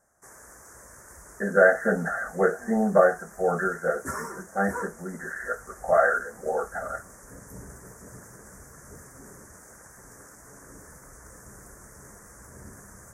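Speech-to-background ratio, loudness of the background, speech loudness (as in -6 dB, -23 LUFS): 19.0 dB, -44.0 LUFS, -25.0 LUFS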